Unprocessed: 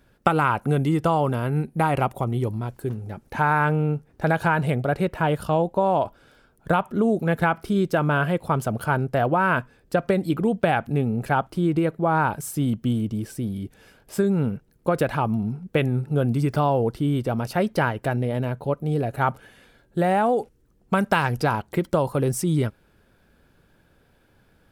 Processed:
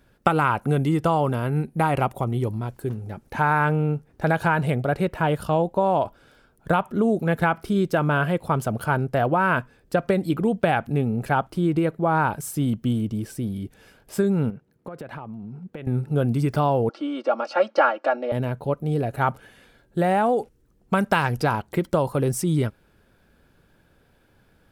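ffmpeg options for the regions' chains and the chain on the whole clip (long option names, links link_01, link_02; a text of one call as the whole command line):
ffmpeg -i in.wav -filter_complex "[0:a]asettb=1/sr,asplit=3[link_01][link_02][link_03];[link_01]atrim=end=14.504[link_04];[link_02]atrim=start=14.5:end=15.87,asetpts=PTS-STARTPTS,afade=type=in:duration=0.004:curve=qsin,afade=type=out:start_time=1.366:duration=0.004:curve=qsin,highpass=110,highshelf=frequency=4000:gain=-11,acompressor=threshold=-32dB:ratio=10:attack=3.2:release=140:knee=1:detection=peak[link_05];[link_03]atrim=start=15.866[link_06];[link_04][link_05]acrossfade=duration=0.004:curve1=hsin:curve2=qsin[link_07];[link_07][link_06]acrossfade=duration=0.004:curve1=qsin:curve2=hsin,asettb=1/sr,asplit=3[link_08][link_09][link_10];[link_08]atrim=end=16.894[link_11];[link_09]atrim=start=16.89:end=18.32,asetpts=PTS-STARTPTS,afade=type=in:duration=0.004:curve=qsin,afade=type=out:start_time=1.426:duration=0.004:curve=qsin,highpass=frequency=350:width=0.5412,highpass=frequency=350:width=1.3066,equalizer=frequency=420:width_type=q:width=4:gain=-5,equalizer=frequency=660:width_type=q:width=4:gain=8,equalizer=frequency=1300:width_type=q:width=4:gain=8,equalizer=frequency=1900:width_type=q:width=4:gain=-6,equalizer=frequency=3500:width_type=q:width=4:gain=-5,lowpass=frequency=5300:width=0.5412,lowpass=frequency=5300:width=1.3066,aecho=1:1:3.6:0.84,atrim=end_sample=63063[link_12];[link_10]atrim=start=18.316[link_13];[link_11][link_12]acrossfade=duration=0.004:curve1=hsin:curve2=qsin[link_14];[link_14][link_13]acrossfade=duration=0.004:curve1=qsin:curve2=hsin" out.wav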